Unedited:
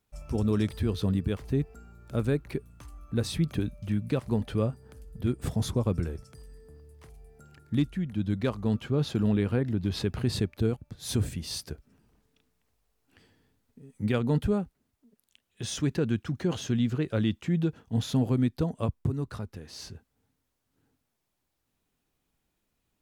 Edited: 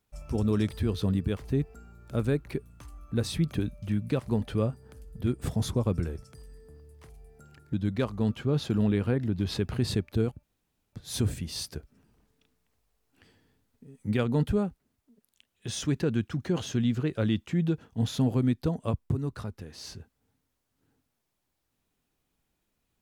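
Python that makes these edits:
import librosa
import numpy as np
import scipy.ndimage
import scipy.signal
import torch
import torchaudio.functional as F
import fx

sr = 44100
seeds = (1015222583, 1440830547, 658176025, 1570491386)

y = fx.edit(x, sr, fx.cut(start_s=7.73, length_s=0.45),
    fx.insert_room_tone(at_s=10.88, length_s=0.5), tone=tone)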